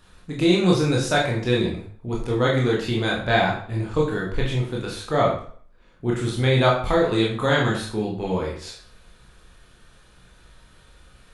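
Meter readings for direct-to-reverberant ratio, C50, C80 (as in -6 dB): -3.0 dB, 5.0 dB, 9.0 dB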